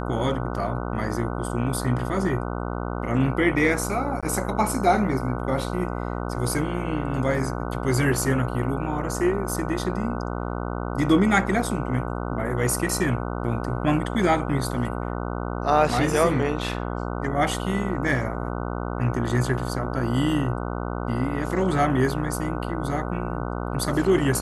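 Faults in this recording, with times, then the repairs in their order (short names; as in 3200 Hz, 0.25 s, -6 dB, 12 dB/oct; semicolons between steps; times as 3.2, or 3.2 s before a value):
buzz 60 Hz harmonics 25 -29 dBFS
4.21–4.23 gap 16 ms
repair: de-hum 60 Hz, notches 25; interpolate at 4.21, 16 ms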